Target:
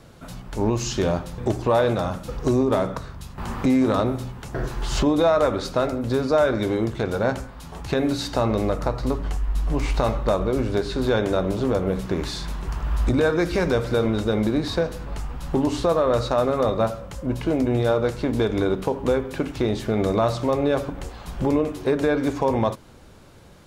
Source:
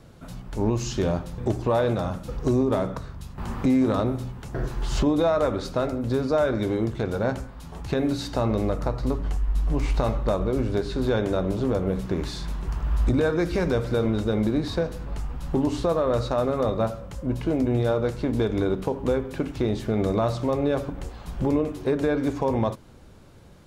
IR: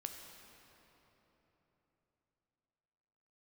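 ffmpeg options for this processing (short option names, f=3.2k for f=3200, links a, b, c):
-af "lowshelf=f=410:g=-5,volume=5dB"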